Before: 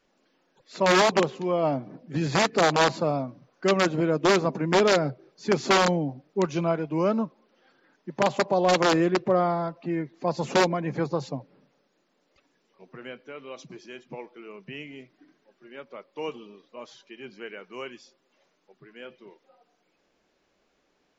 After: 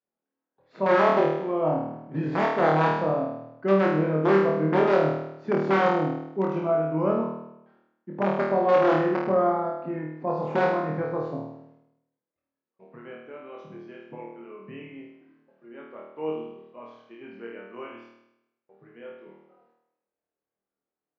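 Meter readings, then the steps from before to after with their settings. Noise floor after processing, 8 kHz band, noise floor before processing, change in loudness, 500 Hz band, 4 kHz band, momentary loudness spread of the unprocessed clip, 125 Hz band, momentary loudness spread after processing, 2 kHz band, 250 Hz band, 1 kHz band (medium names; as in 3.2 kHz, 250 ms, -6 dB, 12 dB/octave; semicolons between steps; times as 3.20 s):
under -85 dBFS, no reading, -71 dBFS, 0.0 dB, +1.0 dB, -13.0 dB, 21 LU, 0.0 dB, 21 LU, -3.0 dB, 0.0 dB, +0.5 dB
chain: low-pass 1.6 kHz 12 dB/octave; gate with hold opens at -54 dBFS; high-pass 73 Hz; on a send: flutter echo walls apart 4.4 m, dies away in 0.84 s; on the sum: trim -3.5 dB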